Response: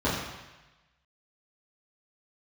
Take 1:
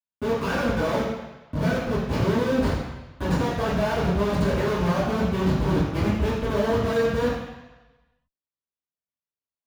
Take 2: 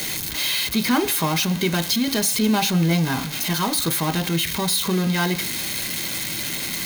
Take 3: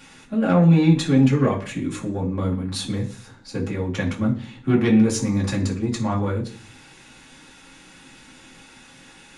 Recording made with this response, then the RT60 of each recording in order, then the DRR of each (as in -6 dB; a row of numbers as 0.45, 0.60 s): 1; 1.1 s, not exponential, 0.45 s; -11.0, 9.0, -3.5 dB